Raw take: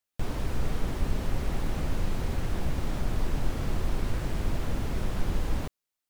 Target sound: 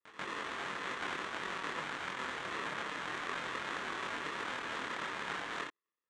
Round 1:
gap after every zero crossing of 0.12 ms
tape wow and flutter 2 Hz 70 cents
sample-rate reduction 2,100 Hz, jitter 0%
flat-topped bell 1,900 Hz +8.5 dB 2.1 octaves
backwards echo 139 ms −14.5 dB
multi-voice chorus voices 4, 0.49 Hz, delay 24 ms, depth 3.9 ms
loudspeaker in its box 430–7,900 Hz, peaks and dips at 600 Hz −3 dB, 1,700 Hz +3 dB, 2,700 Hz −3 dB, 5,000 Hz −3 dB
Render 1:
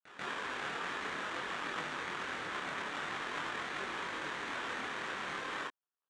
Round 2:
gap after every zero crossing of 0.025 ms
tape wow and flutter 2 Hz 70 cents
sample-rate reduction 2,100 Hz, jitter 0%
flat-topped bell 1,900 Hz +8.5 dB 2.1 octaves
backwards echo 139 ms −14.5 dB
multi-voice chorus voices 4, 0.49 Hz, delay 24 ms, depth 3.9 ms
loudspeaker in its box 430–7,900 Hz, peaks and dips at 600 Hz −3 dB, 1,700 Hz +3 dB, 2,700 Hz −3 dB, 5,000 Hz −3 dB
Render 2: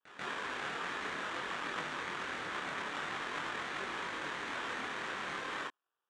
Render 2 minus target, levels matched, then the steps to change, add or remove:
sample-rate reduction: distortion −5 dB
change: sample-rate reduction 760 Hz, jitter 0%

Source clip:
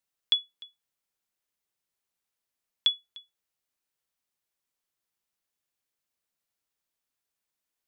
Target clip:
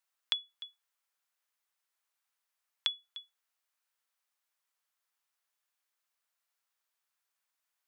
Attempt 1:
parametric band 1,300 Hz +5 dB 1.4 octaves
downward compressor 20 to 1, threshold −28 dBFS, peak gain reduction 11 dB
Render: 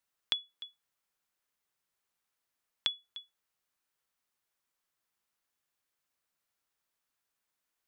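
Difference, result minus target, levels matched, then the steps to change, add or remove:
500 Hz band +5.0 dB
add after downward compressor: high-pass filter 660 Hz 12 dB per octave

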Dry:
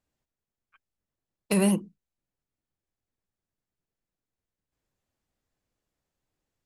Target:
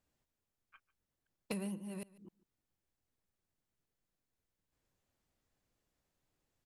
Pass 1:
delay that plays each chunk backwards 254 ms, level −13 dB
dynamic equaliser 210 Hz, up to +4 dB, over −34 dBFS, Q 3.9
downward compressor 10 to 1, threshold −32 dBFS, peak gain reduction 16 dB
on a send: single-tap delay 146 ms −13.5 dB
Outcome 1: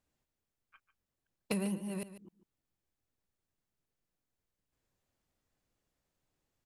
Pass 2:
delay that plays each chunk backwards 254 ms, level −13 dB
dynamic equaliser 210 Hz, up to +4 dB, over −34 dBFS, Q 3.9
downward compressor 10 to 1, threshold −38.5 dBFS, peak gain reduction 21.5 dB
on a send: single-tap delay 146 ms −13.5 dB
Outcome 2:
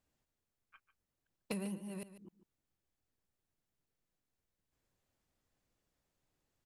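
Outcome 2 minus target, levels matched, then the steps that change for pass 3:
echo-to-direct +7.5 dB
change: single-tap delay 146 ms −21 dB

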